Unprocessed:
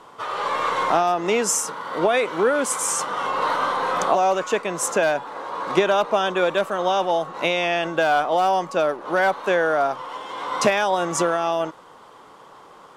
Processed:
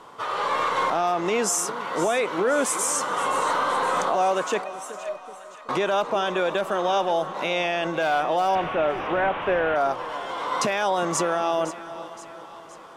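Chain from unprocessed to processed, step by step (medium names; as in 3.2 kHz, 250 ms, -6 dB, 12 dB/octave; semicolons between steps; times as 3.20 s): 8.55–9.76 s: one-bit delta coder 16 kbps, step -24.5 dBFS; peak limiter -14.5 dBFS, peak gain reduction 9.5 dB; 4.64–5.69 s: feedback comb 620 Hz, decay 0.2 s, harmonics all, mix 100%; two-band feedback delay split 750 Hz, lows 377 ms, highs 519 ms, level -14 dB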